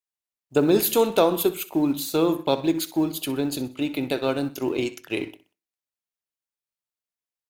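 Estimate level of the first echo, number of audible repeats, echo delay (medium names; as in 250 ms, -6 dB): -17.0 dB, 3, 63 ms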